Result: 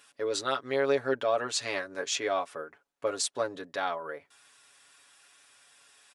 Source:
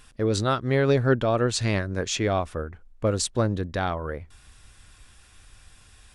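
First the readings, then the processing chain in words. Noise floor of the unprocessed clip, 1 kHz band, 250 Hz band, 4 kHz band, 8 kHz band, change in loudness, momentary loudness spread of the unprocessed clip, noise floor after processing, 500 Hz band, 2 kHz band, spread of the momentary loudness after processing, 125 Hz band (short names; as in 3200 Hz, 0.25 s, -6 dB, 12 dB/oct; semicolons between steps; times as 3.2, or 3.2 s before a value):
-54 dBFS, -3.5 dB, -13.0 dB, -2.5 dB, -2.5 dB, -6.0 dB, 11 LU, -73 dBFS, -4.5 dB, -3.5 dB, 12 LU, -25.0 dB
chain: HPF 490 Hz 12 dB/oct; comb 7.1 ms, depth 75%; gain -4.5 dB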